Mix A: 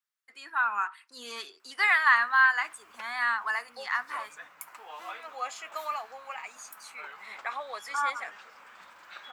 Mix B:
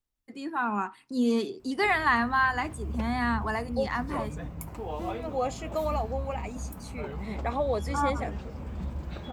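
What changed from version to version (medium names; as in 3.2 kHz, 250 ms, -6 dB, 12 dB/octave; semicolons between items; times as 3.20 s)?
master: remove resonant high-pass 1.4 kHz, resonance Q 2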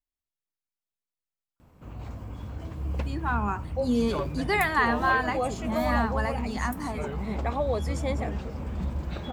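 first voice: entry +2.70 s; background +4.0 dB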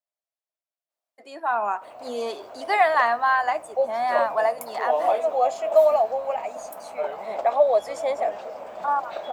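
first voice: entry -1.80 s; master: add resonant high-pass 640 Hz, resonance Q 6.1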